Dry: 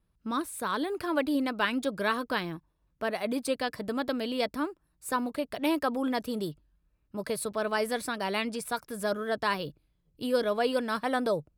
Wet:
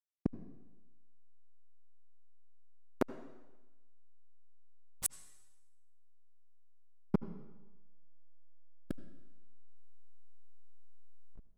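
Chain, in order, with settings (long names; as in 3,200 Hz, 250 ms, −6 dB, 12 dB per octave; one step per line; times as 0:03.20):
turntable brake at the end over 2.75 s
parametric band 2,300 Hz −7 dB 0.56 octaves
gate with flip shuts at −32 dBFS, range −41 dB
slack as between gear wheels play −43 dBFS
on a send: convolution reverb RT60 1.1 s, pre-delay 68 ms, DRR 13 dB
on the sum: level +16.5 dB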